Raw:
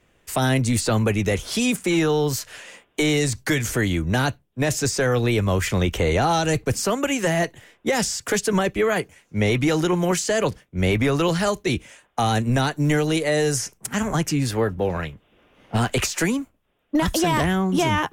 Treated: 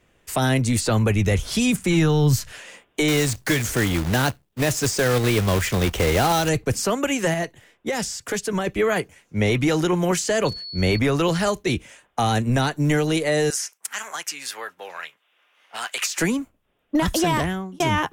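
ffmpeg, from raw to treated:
-filter_complex "[0:a]asettb=1/sr,asplit=3[a][b][c];[a]atrim=end=0.854[d];[b]atrim=start=0.85:end=2.52,asetpts=PTS-STARTPTS,afade=t=in:d=0.004:c=qsin,afade=t=out:st=1.666:d=0.004:c=qsin,asubboost=boost=9.5:cutoff=190[e];[c]atrim=start=2.516[f];[d][e]acrossfade=d=0.004:c1=hsin:c2=qsin[g];[g][f]acrossfade=d=0.004:c1=qsin:c2=hsin,asettb=1/sr,asplit=3[h][i][j];[h]atrim=end=3.084[k];[i]atrim=start=3.08:end=6.49,asetpts=PTS-STARTPTS,afade=t=in:d=0.004:c=qsin,afade=t=out:st=3.406:d=0.004:c=qsin,acrusher=bits=2:mode=log:mix=0:aa=0.000001[l];[j]atrim=start=6.486[m];[k][l]acrossfade=d=0.004:c1=hsin:c2=qsin[n];[n][m]acrossfade=d=0.004:c1=qsin:c2=hsin,asettb=1/sr,asplit=3[o][p][q];[o]atrim=end=10.454[r];[p]atrim=start=10.45:end=10.99,asetpts=PTS-STARTPTS,afade=t=in:d=0.004:c=qsin,afade=t=out:st=0.536:d=0.004:c=qsin,aeval=exprs='val(0)+0.0251*sin(2*PI*4400*n/s)':c=same[s];[q]atrim=start=10.986[t];[r][s]acrossfade=d=0.004:c1=hsin:c2=qsin[u];[u][t]acrossfade=d=0.004:c1=qsin:c2=hsin,asettb=1/sr,asplit=3[v][w][x];[v]atrim=end=13.504[y];[w]atrim=start=13.5:end=16.18,asetpts=PTS-STARTPTS,afade=t=in:d=0.004:c=qsin,afade=t=out:st=2.676:d=0.004:c=qsin,highpass=1.2k[z];[x]atrim=start=16.176[aa];[y][z]acrossfade=d=0.004:c1=hsin:c2=qsin[ab];[ab][aa]acrossfade=d=0.004:c1=qsin:c2=hsin,asplit=4[ac][ad][ae][af];[ac]atrim=end=7.342[ag];[ad]atrim=start=7.338:end=8.672,asetpts=PTS-STARTPTS,volume=-4dB[ah];[ae]atrim=start=8.668:end=17.8,asetpts=PTS-STARTPTS,afade=t=out:st=8.642:d=0.49[ai];[af]atrim=start=17.8,asetpts=PTS-STARTPTS,afade=t=in:d=0.004:c=hsin[aj];[ag][ah]acrossfade=d=0.004:c1=hsin:c2=hsin[ak];[ai][aj]concat=n=2:v=0:a=1[al];[ak][al]acrossfade=d=0.004:c1=hsin:c2=hsin"

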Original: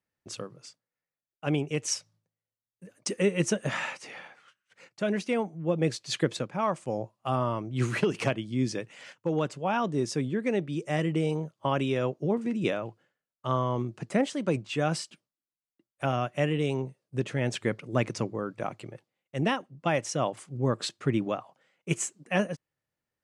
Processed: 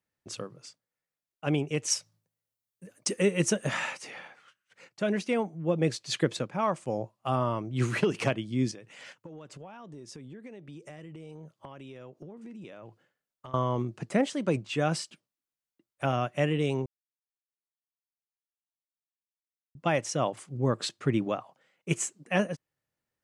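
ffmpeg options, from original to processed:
-filter_complex "[0:a]asettb=1/sr,asplit=3[a][b][c];[a]atrim=end=1.904[d];[b]atrim=start=1.9:end=4.1,asetpts=PTS-STARTPTS,afade=t=in:d=0.004:c=qsin,afade=t=out:st=2.196:d=0.004:c=qsin,highshelf=f=7.9k:g=7.5[e];[c]atrim=start=4.096[f];[d][e]acrossfade=d=0.004:c1=hsin:c2=qsin[g];[g][f]acrossfade=d=0.004:c1=qsin:c2=hsin,asettb=1/sr,asplit=3[h][i][j];[h]atrim=end=8.714[k];[i]atrim=start=8.71:end=13.54,asetpts=PTS-STARTPTS,afade=t=in:d=0.004:c=qsin,afade=t=out:st=4.826:d=0.004:c=qsin,acompressor=threshold=-41dB:ratio=16:attack=3.2:release=140:knee=1:detection=peak[l];[j]atrim=start=13.536[m];[k][l]acrossfade=d=0.004:c1=hsin:c2=qsin[n];[n][m]acrossfade=d=0.004:c1=qsin:c2=hsin,asplit=3[o][p][q];[o]atrim=end=16.86,asetpts=PTS-STARTPTS,afade=t=out:st=16.856:d=0.004:c=hsin[r];[p]atrim=start=16.86:end=19.75,asetpts=PTS-STARTPTS,volume=0[s];[q]atrim=start=19.75,asetpts=PTS-STARTPTS,afade=t=in:d=0.004:c=hsin[t];[r][s][t]concat=n=3:v=0:a=1"

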